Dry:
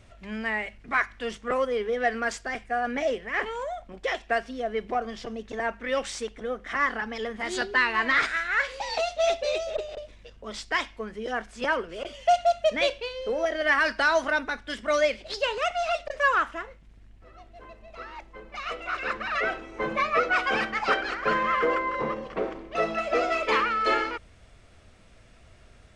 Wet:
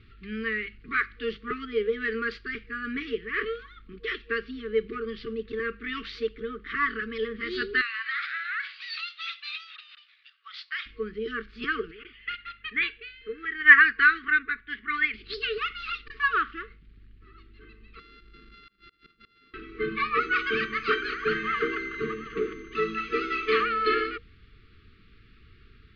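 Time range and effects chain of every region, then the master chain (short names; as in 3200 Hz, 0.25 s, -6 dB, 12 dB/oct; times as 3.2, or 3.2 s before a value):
7.81–10.86 steep high-pass 1100 Hz + compressor 3:1, threshold -28 dBFS
11.91–15.14 LPF 3100 Hz + bell 1900 Hz +13.5 dB 0.99 oct + upward expander, over -27 dBFS
17.99–19.54 sample sorter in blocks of 64 samples + flipped gate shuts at -23 dBFS, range -30 dB + compressor 10:1, threshold -44 dBFS
20.19–23.64 whine 6200 Hz -41 dBFS + echo 0.73 s -15 dB
whole clip: FFT band-reject 470–1100 Hz; Chebyshev low-pass 4500 Hz, order 5; dynamic EQ 450 Hz, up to +6 dB, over -47 dBFS, Q 7.9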